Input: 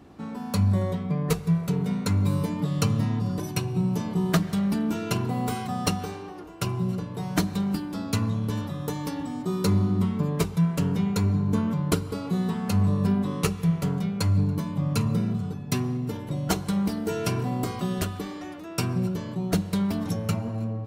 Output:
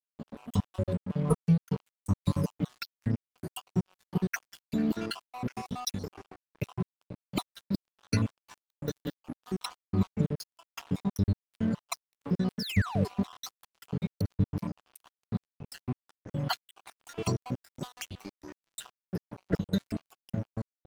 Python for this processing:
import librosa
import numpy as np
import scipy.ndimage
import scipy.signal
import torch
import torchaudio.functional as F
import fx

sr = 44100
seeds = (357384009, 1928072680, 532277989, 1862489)

y = fx.spec_dropout(x, sr, seeds[0], share_pct=75)
y = fx.dynamic_eq(y, sr, hz=4300.0, q=1.2, threshold_db=-57.0, ratio=4.0, max_db=4)
y = fx.spec_paint(y, sr, seeds[1], shape='fall', start_s=12.59, length_s=0.49, low_hz=370.0, high_hz=5800.0, level_db=-34.0)
y = np.sign(y) * np.maximum(np.abs(y) - 10.0 ** (-41.0 / 20.0), 0.0)